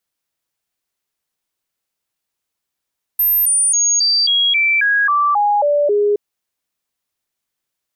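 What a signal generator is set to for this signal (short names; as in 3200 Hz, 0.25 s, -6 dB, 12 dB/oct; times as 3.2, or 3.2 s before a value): stepped sine 13200 Hz down, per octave 2, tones 11, 0.27 s, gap 0.00 s -11.5 dBFS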